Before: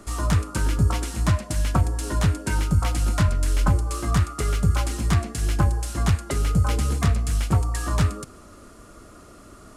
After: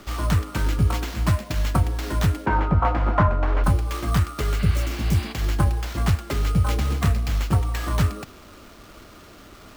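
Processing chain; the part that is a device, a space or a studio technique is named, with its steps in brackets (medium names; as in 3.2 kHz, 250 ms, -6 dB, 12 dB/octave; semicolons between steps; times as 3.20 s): early 8-bit sampler (sample-rate reducer 9.7 kHz, jitter 0%; bit crusher 8-bit); 2.46–3.64 s: FFT filter 140 Hz 0 dB, 1 kHz +12 dB, 11 kHz -30 dB; 4.61–5.30 s: spectral replace 630–5100 Hz both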